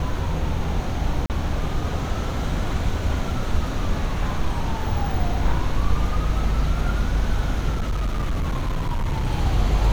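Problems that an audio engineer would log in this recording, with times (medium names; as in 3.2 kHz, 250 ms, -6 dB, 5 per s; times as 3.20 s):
1.26–1.30 s: dropout 38 ms
7.71–9.27 s: clipped -19.5 dBFS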